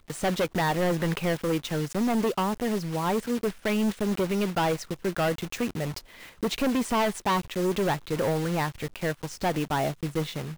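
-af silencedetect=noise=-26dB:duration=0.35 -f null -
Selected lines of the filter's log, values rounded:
silence_start: 5.98
silence_end: 6.43 | silence_duration: 0.45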